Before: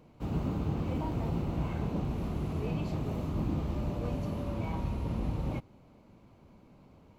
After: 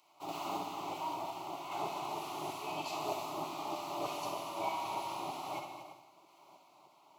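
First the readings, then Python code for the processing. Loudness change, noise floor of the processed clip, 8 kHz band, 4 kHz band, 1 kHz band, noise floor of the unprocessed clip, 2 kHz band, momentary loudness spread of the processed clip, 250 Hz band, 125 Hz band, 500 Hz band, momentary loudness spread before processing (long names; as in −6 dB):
−5.5 dB, −64 dBFS, can't be measured, +8.0 dB, +7.0 dB, −59 dBFS, +2.5 dB, 5 LU, −12.5 dB, −23.5 dB, −2.0 dB, 2 LU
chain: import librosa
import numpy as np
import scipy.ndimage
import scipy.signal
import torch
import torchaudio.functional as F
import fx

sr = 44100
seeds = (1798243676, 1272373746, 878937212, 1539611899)

p1 = fx.filter_lfo_highpass(x, sr, shape='saw_down', hz=3.2, low_hz=590.0, high_hz=1600.0, q=0.93)
p2 = fx.tremolo_random(p1, sr, seeds[0], hz=3.5, depth_pct=55)
p3 = scipy.signal.sosfilt(scipy.signal.butter(2, 55.0, 'highpass', fs=sr, output='sos'), p2)
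p4 = fx.fixed_phaser(p3, sr, hz=330.0, stages=8)
p5 = p4 + fx.echo_multitap(p4, sr, ms=(65, 235, 336), db=(-7.0, -10.0, -14.0), dry=0)
p6 = fx.rev_gated(p5, sr, seeds[1], gate_ms=210, shape='flat', drr_db=6.5)
y = p6 * 10.0 ** (11.0 / 20.0)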